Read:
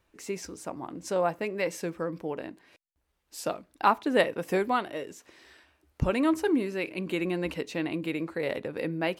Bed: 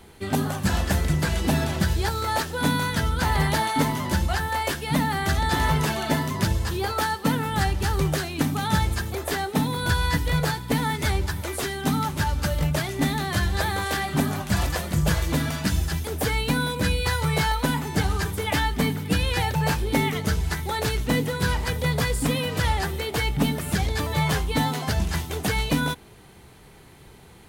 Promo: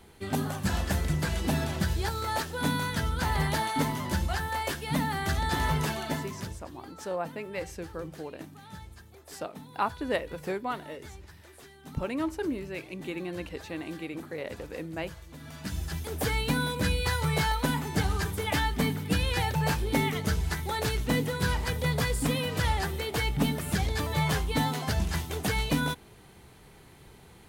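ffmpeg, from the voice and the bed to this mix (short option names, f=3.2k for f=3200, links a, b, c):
-filter_complex "[0:a]adelay=5950,volume=-6dB[a];[1:a]volume=13.5dB,afade=t=out:st=5.87:d=0.77:silence=0.133352,afade=t=in:st=15.38:d=0.9:silence=0.112202[b];[a][b]amix=inputs=2:normalize=0"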